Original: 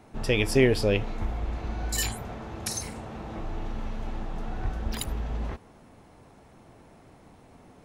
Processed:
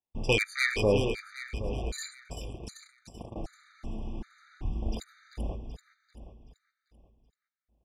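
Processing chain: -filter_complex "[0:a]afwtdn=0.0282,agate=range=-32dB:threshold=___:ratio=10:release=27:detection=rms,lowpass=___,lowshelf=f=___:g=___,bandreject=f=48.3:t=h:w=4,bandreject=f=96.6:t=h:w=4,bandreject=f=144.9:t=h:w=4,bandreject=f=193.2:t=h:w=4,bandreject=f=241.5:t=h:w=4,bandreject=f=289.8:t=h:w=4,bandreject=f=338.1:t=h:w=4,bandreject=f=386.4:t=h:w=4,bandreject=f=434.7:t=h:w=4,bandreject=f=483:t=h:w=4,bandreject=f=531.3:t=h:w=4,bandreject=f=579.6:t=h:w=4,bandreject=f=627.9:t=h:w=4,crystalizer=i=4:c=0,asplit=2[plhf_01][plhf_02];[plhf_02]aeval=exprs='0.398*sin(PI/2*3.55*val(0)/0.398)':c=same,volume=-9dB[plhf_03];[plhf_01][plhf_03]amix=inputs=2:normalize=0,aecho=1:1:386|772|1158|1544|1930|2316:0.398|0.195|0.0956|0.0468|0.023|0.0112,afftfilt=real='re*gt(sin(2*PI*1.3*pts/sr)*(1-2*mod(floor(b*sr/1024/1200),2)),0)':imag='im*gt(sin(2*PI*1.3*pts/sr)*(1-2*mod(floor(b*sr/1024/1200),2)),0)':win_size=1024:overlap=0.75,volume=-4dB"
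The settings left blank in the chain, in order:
-38dB, 4300, 500, -6.5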